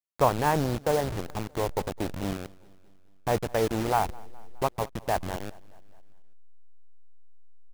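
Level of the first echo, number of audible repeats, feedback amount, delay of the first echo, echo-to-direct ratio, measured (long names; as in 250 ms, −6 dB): −24.0 dB, 3, 59%, 209 ms, −22.0 dB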